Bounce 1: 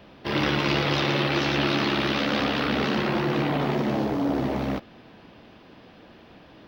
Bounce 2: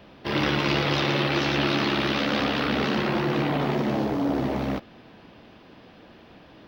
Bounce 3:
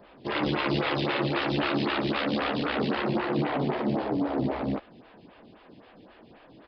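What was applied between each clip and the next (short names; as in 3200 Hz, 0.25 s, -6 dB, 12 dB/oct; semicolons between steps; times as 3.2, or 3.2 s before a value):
nothing audible
downsampling 11025 Hz; photocell phaser 3.8 Hz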